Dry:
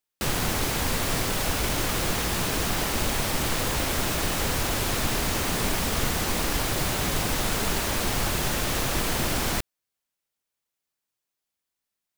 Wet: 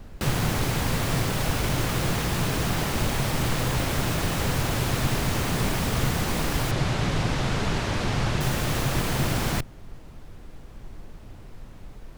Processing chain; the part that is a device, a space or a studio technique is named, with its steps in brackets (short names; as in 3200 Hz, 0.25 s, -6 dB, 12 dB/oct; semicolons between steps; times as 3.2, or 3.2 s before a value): car interior (bell 130 Hz +9 dB 0.86 oct; high shelf 4100 Hz -5 dB; brown noise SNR 14 dB); 6.71–8.41 LPF 5900 Hz 12 dB/oct